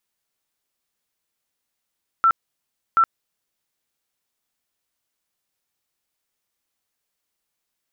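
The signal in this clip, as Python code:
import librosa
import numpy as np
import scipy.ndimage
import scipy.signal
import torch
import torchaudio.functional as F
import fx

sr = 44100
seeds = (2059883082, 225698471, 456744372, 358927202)

y = fx.tone_burst(sr, hz=1340.0, cycles=92, every_s=0.73, bursts=2, level_db=-12.0)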